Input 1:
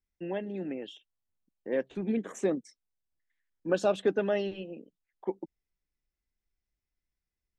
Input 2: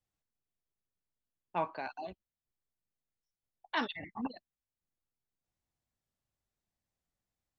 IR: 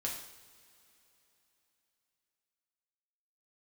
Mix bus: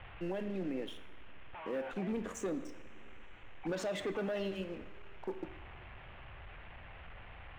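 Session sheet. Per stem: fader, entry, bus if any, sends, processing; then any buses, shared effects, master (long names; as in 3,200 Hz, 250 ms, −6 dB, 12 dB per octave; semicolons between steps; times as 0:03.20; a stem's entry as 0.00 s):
−11.0 dB, 0.00 s, send −7 dB, leveller curve on the samples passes 2
+2.0 dB, 0.00 s, no send, sign of each sample alone; Butterworth low-pass 2,900 Hz 48 dB per octave; parametric band 240 Hz −13 dB 2 octaves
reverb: on, pre-delay 3 ms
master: brickwall limiter −30 dBFS, peak gain reduction 8.5 dB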